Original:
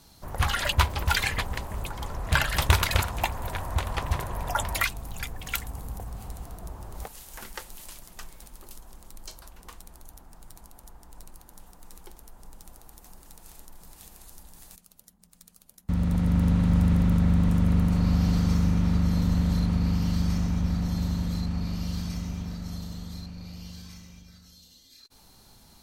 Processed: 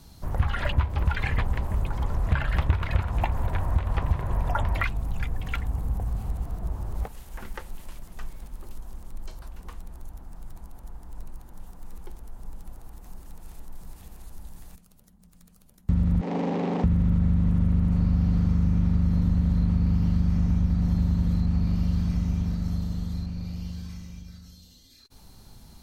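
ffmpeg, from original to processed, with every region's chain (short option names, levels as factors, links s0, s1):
-filter_complex "[0:a]asettb=1/sr,asplit=3[s0][s1][s2];[s0]atrim=end=16.214[s3];[s1]atrim=start=16.21:end=16.84,asetpts=PTS-STARTPTS,afade=t=in:d=0.004:c=qsin,afade=t=out:st=0.626:d=0.004:c=qsin,aeval=exprs='val(0)+0.5*0.0473*sgn(val(0))':c=same,highpass=f=270:w=0.5412,highpass=f=270:w=1.3066,equalizer=f=430:t=q:w=4:g=8,equalizer=f=790:t=q:w=4:g=9,equalizer=f=1400:t=q:w=4:g=-9,lowpass=f=6700:w=0.5412,lowpass=f=6700:w=1.3066[s4];[s2]atrim=start=16.836[s5];[s3][s4]acrossfade=d=0.004:c1=hsin:c2=qsin[s6];[s6][s5]acrossfade=d=0.004:c1=qsin:c2=hsin,acrossover=split=2800[s7][s8];[s8]acompressor=threshold=0.00251:ratio=4:attack=1:release=60[s9];[s7][s9]amix=inputs=2:normalize=0,lowshelf=f=240:g=10,acompressor=threshold=0.112:ratio=5"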